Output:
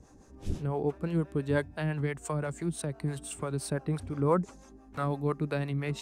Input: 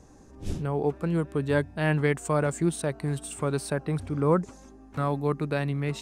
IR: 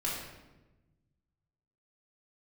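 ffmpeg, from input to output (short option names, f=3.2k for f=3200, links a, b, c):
-filter_complex "[0:a]asettb=1/sr,asplit=3[a][b][c];[a]atrim=end=1.724[d];[b]atrim=start=1.72:end=3.61,asetpts=PTS-STARTPTS,afade=t=in:d=0.004:c=qsin,afade=t=out:st=1.886:d=0.004:c=qsin,acrossover=split=170[e][f];[f]acompressor=threshold=-29dB:ratio=3[g];[e][g]amix=inputs=2:normalize=0[h];[c]atrim=start=3.606[i];[d][h]acrossfade=d=0.004:c1=hsin:c2=qsin[j];[j][i]acrossfade=d=0.004:c1=qsin:c2=hsin,acrossover=split=420[k][l];[k]aeval=exprs='val(0)*(1-0.7/2+0.7/2*cos(2*PI*5.9*n/s))':c=same[m];[l]aeval=exprs='val(0)*(1-0.7/2-0.7/2*cos(2*PI*5.9*n/s))':c=same[n];[m][n]amix=inputs=2:normalize=0"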